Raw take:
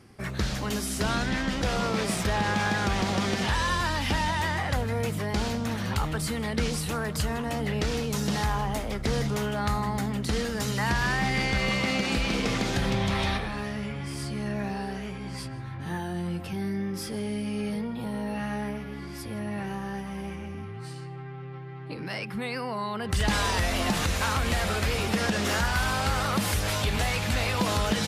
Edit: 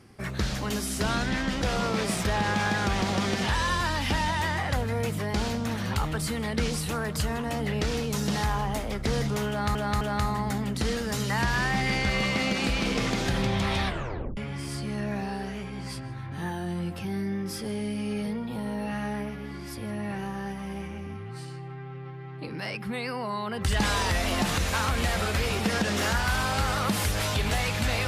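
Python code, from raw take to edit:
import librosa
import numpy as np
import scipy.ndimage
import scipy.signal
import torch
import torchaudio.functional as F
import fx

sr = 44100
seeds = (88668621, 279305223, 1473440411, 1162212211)

y = fx.edit(x, sr, fx.repeat(start_s=9.49, length_s=0.26, count=3),
    fx.tape_stop(start_s=13.34, length_s=0.51), tone=tone)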